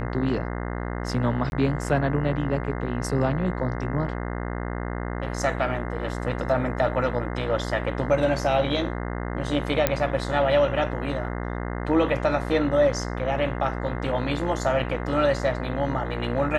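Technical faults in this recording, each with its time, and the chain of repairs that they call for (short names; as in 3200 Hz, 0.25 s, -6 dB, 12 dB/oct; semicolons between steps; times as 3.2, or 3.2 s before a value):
buzz 60 Hz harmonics 35 -30 dBFS
1.5–1.52 gap 21 ms
9.87 pop -4 dBFS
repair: de-click; de-hum 60 Hz, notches 35; interpolate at 1.5, 21 ms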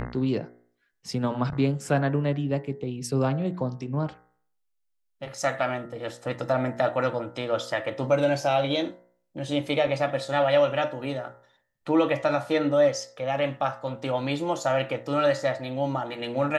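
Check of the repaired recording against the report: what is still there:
none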